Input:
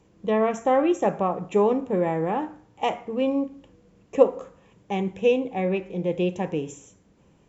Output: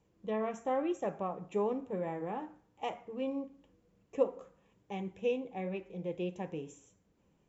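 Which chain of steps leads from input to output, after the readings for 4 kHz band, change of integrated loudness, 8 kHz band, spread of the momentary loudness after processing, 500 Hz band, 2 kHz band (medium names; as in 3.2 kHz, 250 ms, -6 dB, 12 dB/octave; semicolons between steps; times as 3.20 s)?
-12.5 dB, -12.5 dB, no reading, 10 LU, -12.5 dB, -12.5 dB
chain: flange 1 Hz, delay 1.2 ms, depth 4.8 ms, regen -65%; trim -8.5 dB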